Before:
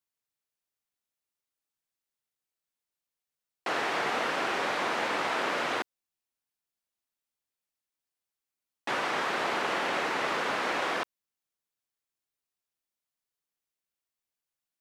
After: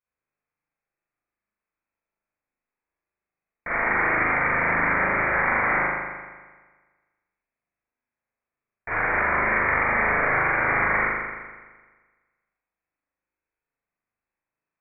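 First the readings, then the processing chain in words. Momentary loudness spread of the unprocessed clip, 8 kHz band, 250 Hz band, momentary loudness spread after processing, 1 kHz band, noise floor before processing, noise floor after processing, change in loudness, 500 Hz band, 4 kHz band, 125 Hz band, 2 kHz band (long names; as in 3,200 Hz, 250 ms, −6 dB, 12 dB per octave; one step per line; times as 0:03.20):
5 LU, below −35 dB, +5.5 dB, 11 LU, +6.0 dB, below −85 dBFS, below −85 dBFS, +8.0 dB, +4.0 dB, below −25 dB, +15.5 dB, +11.0 dB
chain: voice inversion scrambler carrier 2,600 Hz
spring reverb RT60 1.4 s, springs 38 ms, chirp 20 ms, DRR −7.5 dB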